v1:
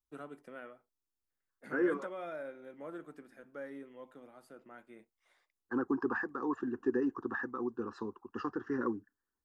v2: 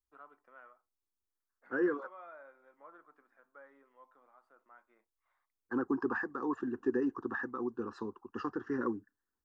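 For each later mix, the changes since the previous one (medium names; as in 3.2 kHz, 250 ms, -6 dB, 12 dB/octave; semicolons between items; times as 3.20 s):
first voice: add band-pass filter 1.1 kHz, Q 2.8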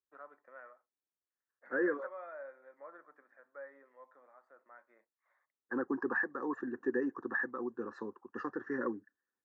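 second voice -3.0 dB; master: add cabinet simulation 150–7600 Hz, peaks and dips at 560 Hz +10 dB, 1.8 kHz +10 dB, 3 kHz -10 dB, 5 kHz -7 dB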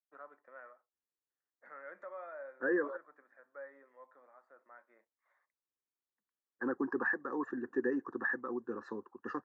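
second voice: entry +0.90 s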